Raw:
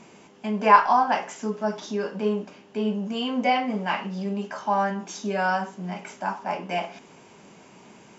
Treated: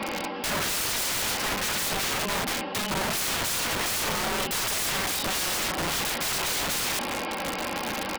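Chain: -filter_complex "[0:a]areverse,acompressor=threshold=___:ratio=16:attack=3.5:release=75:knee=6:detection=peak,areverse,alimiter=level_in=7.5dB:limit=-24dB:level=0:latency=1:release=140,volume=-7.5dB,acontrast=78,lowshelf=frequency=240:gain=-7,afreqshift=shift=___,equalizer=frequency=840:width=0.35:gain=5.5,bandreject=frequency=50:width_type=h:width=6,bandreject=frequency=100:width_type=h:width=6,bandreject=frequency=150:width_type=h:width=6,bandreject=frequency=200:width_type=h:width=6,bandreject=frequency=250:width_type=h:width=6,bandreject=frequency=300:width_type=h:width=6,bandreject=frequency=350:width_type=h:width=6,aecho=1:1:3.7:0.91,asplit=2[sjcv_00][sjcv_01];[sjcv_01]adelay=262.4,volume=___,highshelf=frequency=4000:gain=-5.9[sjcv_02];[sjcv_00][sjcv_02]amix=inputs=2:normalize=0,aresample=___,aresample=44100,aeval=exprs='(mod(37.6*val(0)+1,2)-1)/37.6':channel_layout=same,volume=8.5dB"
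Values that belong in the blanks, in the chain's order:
-30dB, -16, -25dB, 11025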